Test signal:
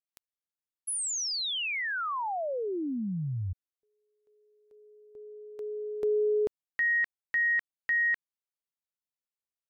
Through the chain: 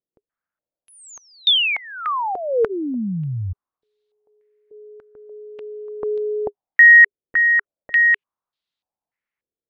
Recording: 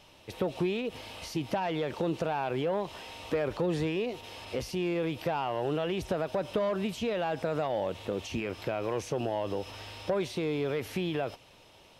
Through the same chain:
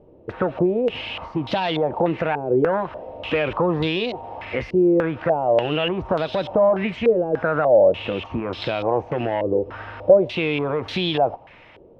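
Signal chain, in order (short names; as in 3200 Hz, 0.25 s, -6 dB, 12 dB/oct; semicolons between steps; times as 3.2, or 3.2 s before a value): notch 410 Hz, Q 12; stepped low-pass 3.4 Hz 430–3800 Hz; gain +7.5 dB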